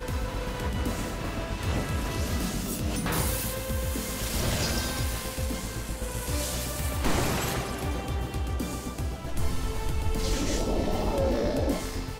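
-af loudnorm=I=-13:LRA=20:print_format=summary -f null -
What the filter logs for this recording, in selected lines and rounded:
Input Integrated:    -30.0 LUFS
Input True Peak:     -12.6 dBTP
Input LRA:             1.6 LU
Input Threshold:     -40.0 LUFS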